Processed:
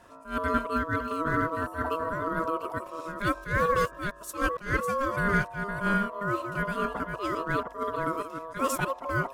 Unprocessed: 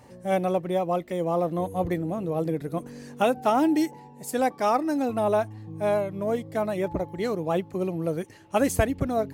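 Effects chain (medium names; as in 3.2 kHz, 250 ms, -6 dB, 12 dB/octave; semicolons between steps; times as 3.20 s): chunks repeated in reverse 457 ms, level -7.5 dB; ring modulator 810 Hz; attacks held to a fixed rise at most 170 dB/s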